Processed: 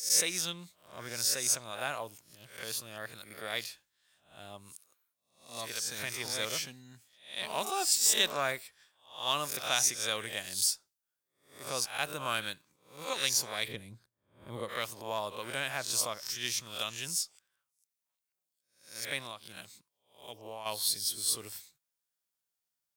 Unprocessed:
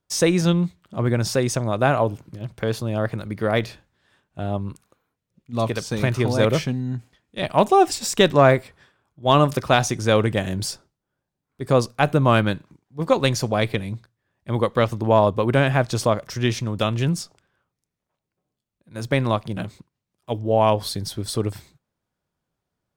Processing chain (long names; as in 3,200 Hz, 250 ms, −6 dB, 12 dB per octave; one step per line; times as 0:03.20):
peak hold with a rise ahead of every peak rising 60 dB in 0.44 s
first-order pre-emphasis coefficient 0.97
0:03.14–0:03.62: notch filter 6,000 Hz, Q 8.5
0:07.42–0:08.34: phone interference −50 dBFS
0:13.68–0:14.69: tilt shelving filter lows +8.5 dB, about 730 Hz
0:19.18–0:20.66: downward compressor 5 to 1, threshold −40 dBFS, peak gain reduction 8.5 dB